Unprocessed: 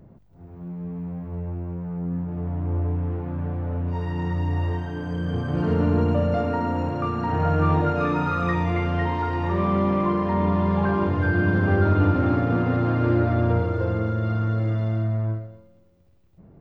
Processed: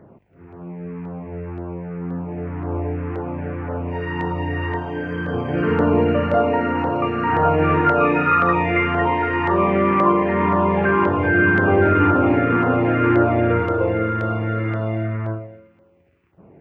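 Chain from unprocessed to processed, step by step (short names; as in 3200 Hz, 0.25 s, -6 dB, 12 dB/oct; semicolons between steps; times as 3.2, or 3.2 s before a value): EQ curve 180 Hz 0 dB, 400 Hz +9 dB, 590 Hz +8 dB, 2500 Hz +15 dB, 3900 Hz -8 dB; LFO notch saw down 1.9 Hz 510–2700 Hz; HPF 83 Hz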